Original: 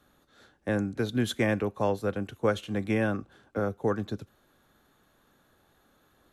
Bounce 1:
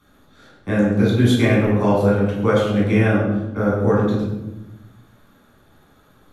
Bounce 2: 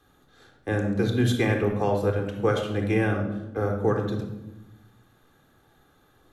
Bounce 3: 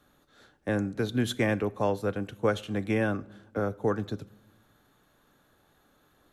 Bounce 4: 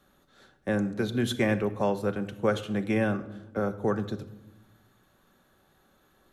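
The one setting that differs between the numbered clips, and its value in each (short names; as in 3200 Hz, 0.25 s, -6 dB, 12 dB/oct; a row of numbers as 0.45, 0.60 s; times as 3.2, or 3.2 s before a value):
shoebox room, microphone at: 12, 3.8, 0.38, 1.1 m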